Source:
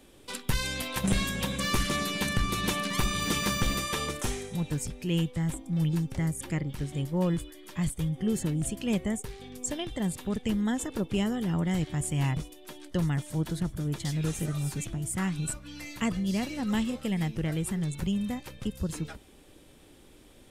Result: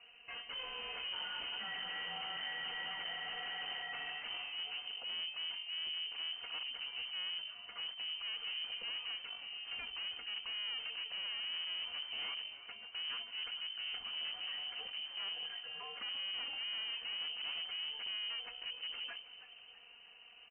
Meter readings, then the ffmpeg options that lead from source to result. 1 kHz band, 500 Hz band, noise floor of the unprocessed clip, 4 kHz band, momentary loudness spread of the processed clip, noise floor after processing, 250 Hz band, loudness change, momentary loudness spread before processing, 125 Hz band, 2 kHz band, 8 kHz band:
−13.0 dB, −22.5 dB, −55 dBFS, +2.0 dB, 5 LU, −58 dBFS, below −35 dB, −9.5 dB, 7 LU, below −40 dB, −6.0 dB, below −40 dB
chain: -filter_complex "[0:a]highpass=frequency=49:width=0.5412,highpass=frequency=49:width=1.3066,aecho=1:1:4.2:0.82,aeval=exprs='(tanh(89.1*val(0)+0.55)-tanh(0.55))/89.1':channel_layout=same,asplit=2[link_01][link_02];[link_02]asplit=5[link_03][link_04][link_05][link_06][link_07];[link_03]adelay=323,afreqshift=-75,volume=-13.5dB[link_08];[link_04]adelay=646,afreqshift=-150,volume=-19.9dB[link_09];[link_05]adelay=969,afreqshift=-225,volume=-26.3dB[link_10];[link_06]adelay=1292,afreqshift=-300,volume=-32.6dB[link_11];[link_07]adelay=1615,afreqshift=-375,volume=-39dB[link_12];[link_08][link_09][link_10][link_11][link_12]amix=inputs=5:normalize=0[link_13];[link_01][link_13]amix=inputs=2:normalize=0,lowpass=frequency=2600:width_type=q:width=0.5098,lowpass=frequency=2600:width_type=q:width=0.6013,lowpass=frequency=2600:width_type=q:width=0.9,lowpass=frequency=2600:width_type=q:width=2.563,afreqshift=-3100,volume=-2dB"

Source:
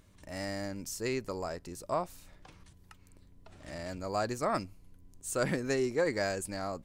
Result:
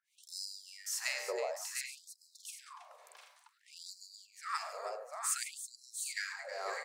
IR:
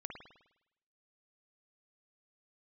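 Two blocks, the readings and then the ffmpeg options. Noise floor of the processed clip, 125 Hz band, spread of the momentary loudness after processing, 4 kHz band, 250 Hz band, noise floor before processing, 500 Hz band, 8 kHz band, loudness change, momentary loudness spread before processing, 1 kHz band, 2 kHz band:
−72 dBFS, below −40 dB, 19 LU, +1.5 dB, below −25 dB, −60 dBFS, −10.5 dB, +4.0 dB, −5.0 dB, 14 LU, −5.5 dB, −2.0 dB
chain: -filter_complex "[0:a]asubboost=boost=6.5:cutoff=120,acompressor=threshold=-38dB:ratio=2,acrossover=split=830[link_01][link_02];[link_01]aeval=exprs='val(0)*(1-1/2+1/2*cos(2*PI*1.4*n/s))':channel_layout=same[link_03];[link_02]aeval=exprs='val(0)*(1-1/2-1/2*cos(2*PI*1.4*n/s))':channel_layout=same[link_04];[link_03][link_04]amix=inputs=2:normalize=0,aecho=1:1:104|143|321|700|747|782:0.211|0.188|0.266|0.422|0.251|0.188,asplit=2[link_05][link_06];[1:a]atrim=start_sample=2205,asetrate=23373,aresample=44100[link_07];[link_06][link_07]afir=irnorm=-1:irlink=0,volume=-8.5dB[link_08];[link_05][link_08]amix=inputs=2:normalize=0,afftfilt=real='re*gte(b*sr/1024,380*pow(4000/380,0.5+0.5*sin(2*PI*0.56*pts/sr)))':imag='im*gte(b*sr/1024,380*pow(4000/380,0.5+0.5*sin(2*PI*0.56*pts/sr)))':win_size=1024:overlap=0.75,volume=6dB"

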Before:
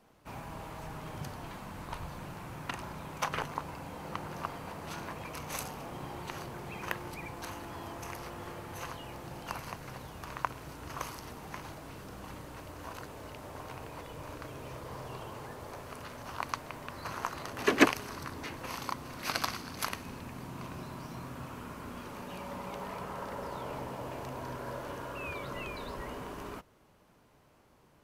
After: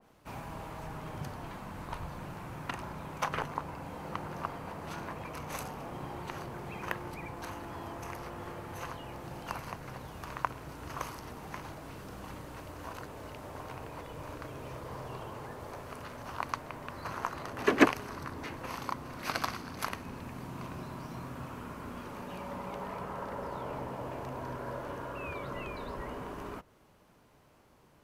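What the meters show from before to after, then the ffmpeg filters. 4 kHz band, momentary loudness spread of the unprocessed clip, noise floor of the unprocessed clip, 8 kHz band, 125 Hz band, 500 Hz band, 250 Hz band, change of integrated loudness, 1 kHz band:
−3.5 dB, 8 LU, −63 dBFS, −4.5 dB, +1.0 dB, +1.0 dB, +1.0 dB, 0.0 dB, +1.0 dB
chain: -af "adynamicequalizer=threshold=0.00224:dfrequency=2400:dqfactor=0.7:tfrequency=2400:tqfactor=0.7:attack=5:release=100:ratio=0.375:range=3.5:mode=cutabove:tftype=highshelf,volume=1dB"

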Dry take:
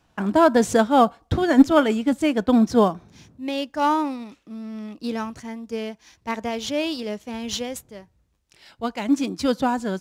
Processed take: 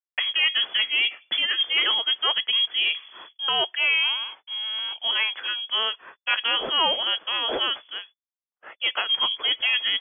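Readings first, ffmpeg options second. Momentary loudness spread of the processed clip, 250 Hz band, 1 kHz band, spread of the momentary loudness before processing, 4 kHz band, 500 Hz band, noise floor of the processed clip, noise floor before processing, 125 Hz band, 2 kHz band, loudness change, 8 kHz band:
8 LU, −27.5 dB, −8.0 dB, 18 LU, +16.0 dB, −14.0 dB, below −85 dBFS, −65 dBFS, below −25 dB, +7.5 dB, −0.5 dB, below −40 dB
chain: -filter_complex "[0:a]agate=range=-56dB:threshold=-49dB:ratio=16:detection=peak,lowpass=frequency=3000:width_type=q:width=0.5098,lowpass=frequency=3000:width_type=q:width=0.6013,lowpass=frequency=3000:width_type=q:width=0.9,lowpass=frequency=3000:width_type=q:width=2.563,afreqshift=-3500,areverse,acompressor=threshold=-24dB:ratio=6,areverse,apsyclip=20.5dB,acrossover=split=300 2500:gain=0.158 1 0.112[link_01][link_02][link_03];[link_01][link_02][link_03]amix=inputs=3:normalize=0,volume=-7.5dB"

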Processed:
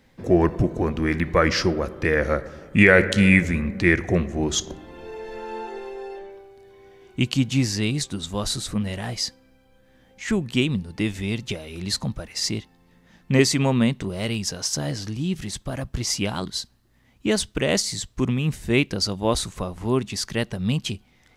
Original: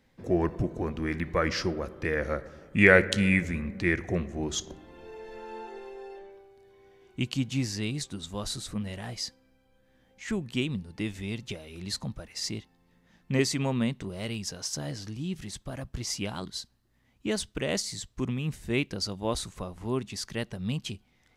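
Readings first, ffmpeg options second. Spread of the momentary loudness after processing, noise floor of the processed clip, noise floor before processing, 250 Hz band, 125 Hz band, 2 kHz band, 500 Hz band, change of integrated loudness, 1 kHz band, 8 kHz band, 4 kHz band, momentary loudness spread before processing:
15 LU, −59 dBFS, −67 dBFS, +8.0 dB, +8.0 dB, +5.5 dB, +6.5 dB, +7.0 dB, +7.5 dB, +8.0 dB, +7.5 dB, 14 LU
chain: -af "alimiter=level_in=9dB:limit=-1dB:release=50:level=0:latency=1,volume=-1dB"

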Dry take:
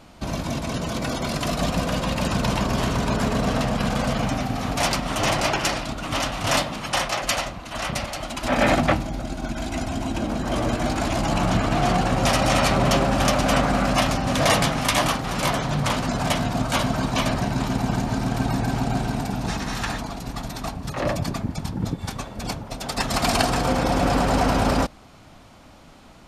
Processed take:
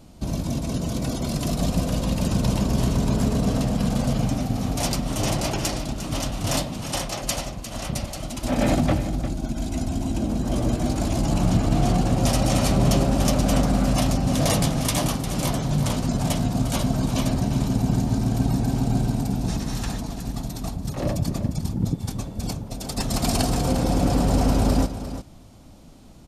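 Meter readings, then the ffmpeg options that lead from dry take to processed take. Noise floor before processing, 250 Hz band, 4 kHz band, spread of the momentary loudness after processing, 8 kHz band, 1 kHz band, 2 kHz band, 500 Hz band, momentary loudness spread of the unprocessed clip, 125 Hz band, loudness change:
−47 dBFS, +1.5 dB, −4.5 dB, 9 LU, 0.0 dB, −6.5 dB, −9.5 dB, −3.0 dB, 10 LU, +3.0 dB, −0.5 dB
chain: -af "equalizer=frequency=1600:width_type=o:width=2.9:gain=-14.5,aecho=1:1:352:0.266,volume=3.5dB"

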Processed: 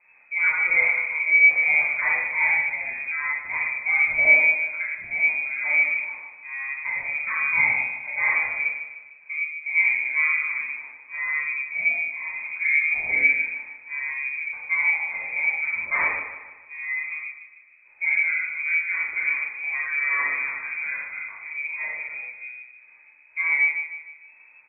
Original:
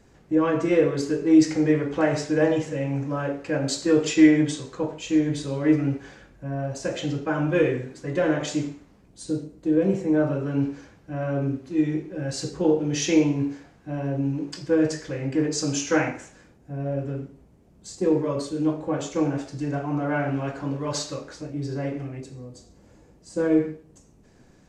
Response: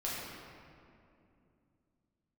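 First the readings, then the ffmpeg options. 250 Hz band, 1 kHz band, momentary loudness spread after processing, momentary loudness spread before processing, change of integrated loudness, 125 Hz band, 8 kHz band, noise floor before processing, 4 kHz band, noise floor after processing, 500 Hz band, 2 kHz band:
below −30 dB, −1.5 dB, 14 LU, 13 LU, +3.0 dB, below −25 dB, below −40 dB, −56 dBFS, below −40 dB, −53 dBFS, −19.5 dB, +16.5 dB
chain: -filter_complex "[0:a]aecho=1:1:152|304|456|608|760:0.282|0.127|0.0571|0.0257|0.0116[link_01];[1:a]atrim=start_sample=2205,afade=type=out:start_time=0.17:duration=0.01,atrim=end_sample=7938[link_02];[link_01][link_02]afir=irnorm=-1:irlink=0,lowpass=frequency=2200:width_type=q:width=0.5098,lowpass=frequency=2200:width_type=q:width=0.6013,lowpass=frequency=2200:width_type=q:width=0.9,lowpass=frequency=2200:width_type=q:width=2.563,afreqshift=-2600,volume=-2.5dB"

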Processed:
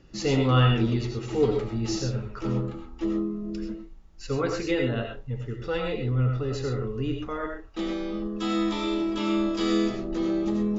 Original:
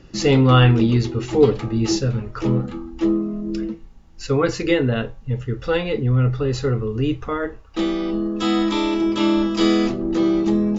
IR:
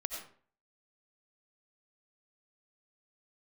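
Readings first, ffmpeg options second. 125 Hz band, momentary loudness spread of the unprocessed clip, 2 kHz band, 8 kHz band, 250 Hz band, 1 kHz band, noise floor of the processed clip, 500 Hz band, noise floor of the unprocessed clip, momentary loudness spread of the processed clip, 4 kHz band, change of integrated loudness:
−7.0 dB, 10 LU, −7.0 dB, can't be measured, −7.5 dB, −6.5 dB, −44 dBFS, −7.5 dB, −43 dBFS, 9 LU, −7.0 dB, −7.5 dB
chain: -filter_complex "[1:a]atrim=start_sample=2205,atrim=end_sample=6174[link_01];[0:a][link_01]afir=irnorm=-1:irlink=0,volume=-7.5dB"

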